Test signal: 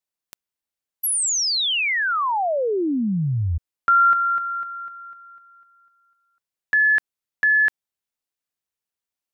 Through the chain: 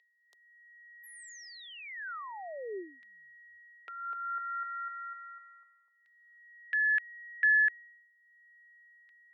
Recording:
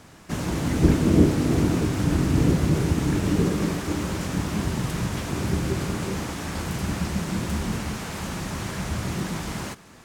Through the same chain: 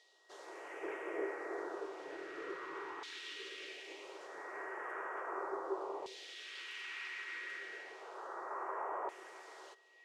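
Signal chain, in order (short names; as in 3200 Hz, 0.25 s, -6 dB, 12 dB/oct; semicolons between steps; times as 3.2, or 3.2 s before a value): whine 1900 Hz -40 dBFS; elliptic high-pass 380 Hz, stop band 40 dB; tilt -4 dB/oct; phaser stages 2, 0.25 Hz, lowest notch 600–3700 Hz; LFO band-pass saw down 0.33 Hz 950–3800 Hz; gain +3.5 dB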